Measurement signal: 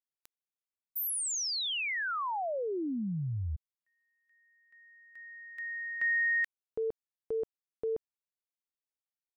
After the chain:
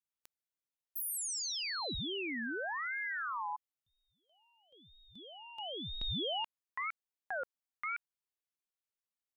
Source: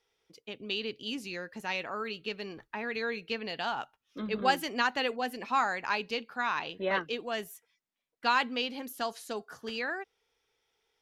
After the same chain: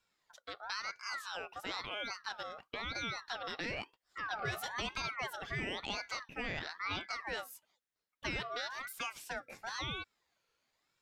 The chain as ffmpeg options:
-af "acompressor=threshold=-31dB:ratio=6:attack=3.9:release=100:knee=6:detection=peak,aeval=exprs='val(0)*sin(2*PI*1400*n/s+1400*0.35/1*sin(2*PI*1*n/s))':c=same"

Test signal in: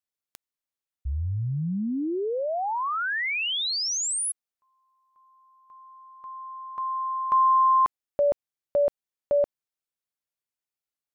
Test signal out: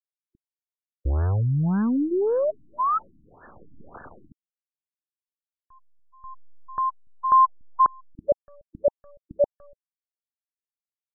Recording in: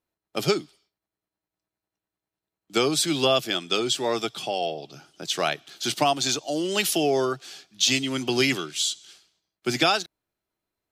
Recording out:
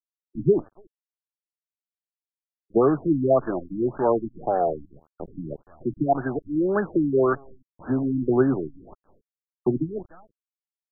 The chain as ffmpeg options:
-filter_complex "[0:a]anlmdn=0.398,highshelf=f=4.9k:g=7.5,asplit=2[a][b];[b]adelay=290,highpass=300,lowpass=3.4k,asoftclip=type=hard:threshold=-13dB,volume=-27dB[c];[a][c]amix=inputs=2:normalize=0,acrusher=bits=6:dc=4:mix=0:aa=0.000001,afftfilt=real='re*lt(b*sr/1024,310*pow(1800/310,0.5+0.5*sin(2*PI*1.8*pts/sr)))':imag='im*lt(b*sr/1024,310*pow(1800/310,0.5+0.5*sin(2*PI*1.8*pts/sr)))':win_size=1024:overlap=0.75,volume=5dB"

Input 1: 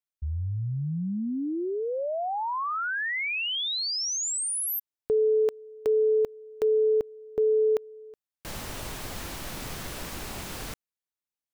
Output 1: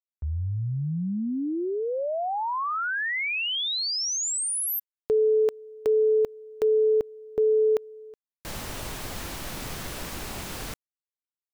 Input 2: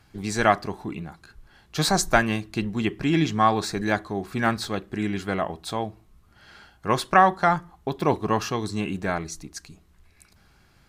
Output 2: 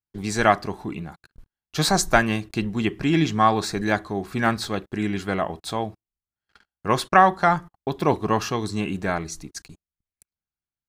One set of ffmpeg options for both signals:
-af "agate=range=-42dB:threshold=-47dB:ratio=16:release=46:detection=rms,volume=1.5dB"

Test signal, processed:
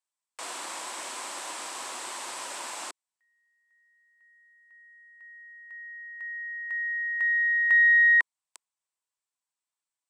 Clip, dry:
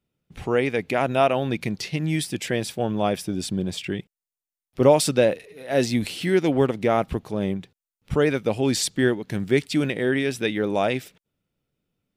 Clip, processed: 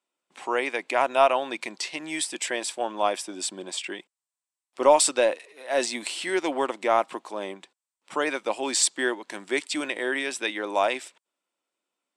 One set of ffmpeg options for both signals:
-af "highpass=f=360:w=0.5412,highpass=f=360:w=1.3066,equalizer=f=440:t=q:w=4:g=-10,equalizer=f=1k:t=q:w=4:g=8,equalizer=f=8k:t=q:w=4:g=9,lowpass=f=10k:w=0.5412,lowpass=f=10k:w=1.3066,aeval=exprs='0.596*(cos(1*acos(clip(val(0)/0.596,-1,1)))-cos(1*PI/2))+0.00668*(cos(4*acos(clip(val(0)/0.596,-1,1)))-cos(4*PI/2))':c=same"

